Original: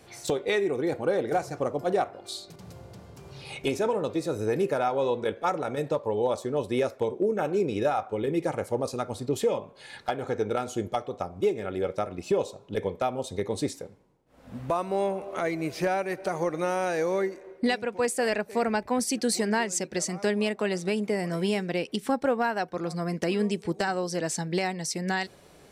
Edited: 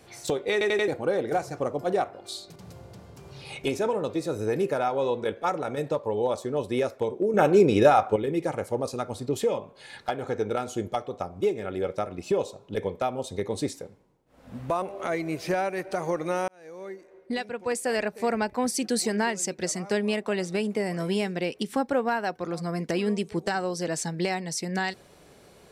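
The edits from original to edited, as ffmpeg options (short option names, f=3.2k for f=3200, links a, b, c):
-filter_complex "[0:a]asplit=9[a][b][c][d][e][f][g][h][i];[a]atrim=end=0.612[j];[b]atrim=start=0.518:end=0.612[k];[c]atrim=start=0.518:end=0.612[l];[d]atrim=start=0.518:end=0.612[m];[e]atrim=start=0.878:end=7.342[n];[f]atrim=start=7.338:end=8.162,asetpts=PTS-STARTPTS,volume=8dB[o];[g]atrim=start=8.158:end=14.822[p];[h]atrim=start=15.148:end=16.81,asetpts=PTS-STARTPTS,afade=t=out:st=1.658:d=0.004:c=hsin[q];[i]atrim=start=16.81,asetpts=PTS-STARTPTS,afade=t=in:d=1.56[r];[j][k]acrossfade=d=0.004:c1=hsin:c2=hsin[s];[s][l]acrossfade=d=0.004:c1=hsin:c2=hsin[t];[t][m]acrossfade=d=0.004:c1=hsin:c2=hsin[u];[u][n]acrossfade=d=0.004:c1=hsin:c2=hsin[v];[v][o]acrossfade=d=0.004:c1=hsin:c2=hsin[w];[w][p]acrossfade=d=0.004:c1=hsin:c2=hsin[x];[q][r]concat=n=2:v=0:a=1[y];[x][y]acrossfade=d=0.004:c1=hsin:c2=hsin"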